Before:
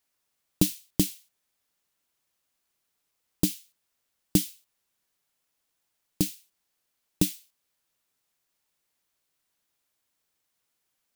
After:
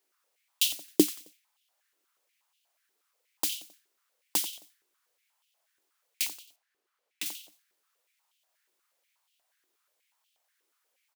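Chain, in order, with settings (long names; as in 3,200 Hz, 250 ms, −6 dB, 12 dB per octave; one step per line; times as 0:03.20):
0:06.29–0:07.26: high-shelf EQ 3,800 Hz −10 dB
repeating echo 89 ms, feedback 35%, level −14 dB
high-pass on a step sequencer 8.3 Hz 370–3,000 Hz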